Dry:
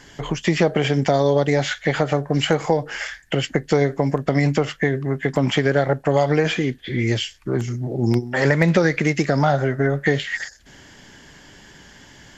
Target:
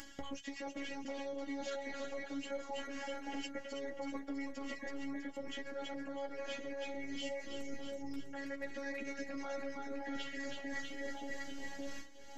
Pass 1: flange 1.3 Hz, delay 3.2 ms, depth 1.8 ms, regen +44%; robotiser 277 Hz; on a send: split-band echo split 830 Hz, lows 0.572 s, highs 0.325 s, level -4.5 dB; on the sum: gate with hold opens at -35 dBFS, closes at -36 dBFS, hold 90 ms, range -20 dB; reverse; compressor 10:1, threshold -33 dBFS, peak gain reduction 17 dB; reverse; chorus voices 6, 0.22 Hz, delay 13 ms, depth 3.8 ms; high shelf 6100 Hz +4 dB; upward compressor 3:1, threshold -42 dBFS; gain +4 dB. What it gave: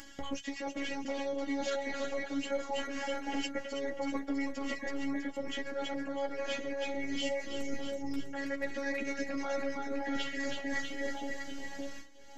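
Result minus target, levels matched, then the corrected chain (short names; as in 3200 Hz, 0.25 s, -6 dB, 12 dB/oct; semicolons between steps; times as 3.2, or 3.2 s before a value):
compressor: peak gain reduction -7.5 dB
flange 1.3 Hz, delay 3.2 ms, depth 1.8 ms, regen +44%; robotiser 277 Hz; on a send: split-band echo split 830 Hz, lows 0.572 s, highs 0.325 s, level -4.5 dB; on the sum: gate with hold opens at -35 dBFS, closes at -36 dBFS, hold 90 ms, range -20 dB; reverse; compressor 10:1, threshold -41.5 dBFS, peak gain reduction 24.5 dB; reverse; chorus voices 6, 0.22 Hz, delay 13 ms, depth 3.8 ms; high shelf 6100 Hz +4 dB; upward compressor 3:1, threshold -42 dBFS; gain +4 dB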